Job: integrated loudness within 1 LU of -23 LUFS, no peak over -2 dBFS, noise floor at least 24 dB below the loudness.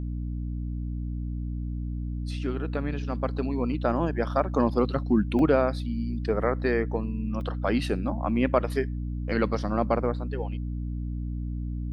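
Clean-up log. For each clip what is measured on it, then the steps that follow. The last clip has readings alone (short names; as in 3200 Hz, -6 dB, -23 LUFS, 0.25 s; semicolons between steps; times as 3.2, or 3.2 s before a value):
dropouts 2; longest dropout 1.1 ms; hum 60 Hz; harmonics up to 300 Hz; hum level -29 dBFS; loudness -28.0 LUFS; peak -8.0 dBFS; loudness target -23.0 LUFS
-> interpolate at 5.39/7.41, 1.1 ms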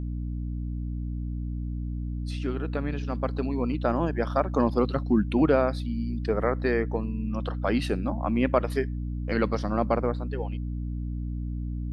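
dropouts 0; hum 60 Hz; harmonics up to 300 Hz; hum level -29 dBFS
-> de-hum 60 Hz, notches 5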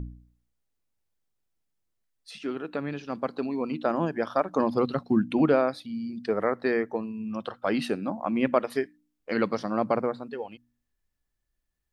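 hum none; loudness -28.5 LUFS; peak -8.0 dBFS; loudness target -23.0 LUFS
-> gain +5.5 dB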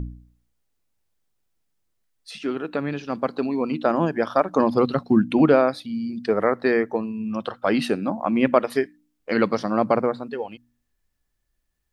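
loudness -23.0 LUFS; peak -2.5 dBFS; noise floor -75 dBFS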